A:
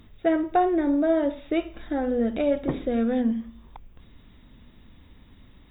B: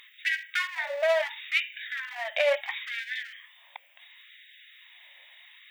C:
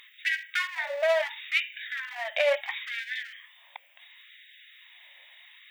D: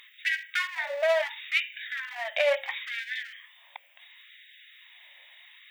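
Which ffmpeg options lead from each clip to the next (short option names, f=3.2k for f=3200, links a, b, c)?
-af "aeval=exprs='clip(val(0),-1,0.0708)':c=same,highshelf=f=1.6k:t=q:w=3:g=7,afftfilt=real='re*gte(b*sr/1024,510*pow(1500/510,0.5+0.5*sin(2*PI*0.72*pts/sr)))':imag='im*gte(b*sr/1024,510*pow(1500/510,0.5+0.5*sin(2*PI*0.72*pts/sr)))':win_size=1024:overlap=0.75,volume=2.5dB"
-af anull
-af "bandreject=f=60:t=h:w=6,bandreject=f=120:t=h:w=6,bandreject=f=180:t=h:w=6,bandreject=f=240:t=h:w=6,bandreject=f=300:t=h:w=6,bandreject=f=360:t=h:w=6,bandreject=f=420:t=h:w=6,bandreject=f=480:t=h:w=6,bandreject=f=540:t=h:w=6"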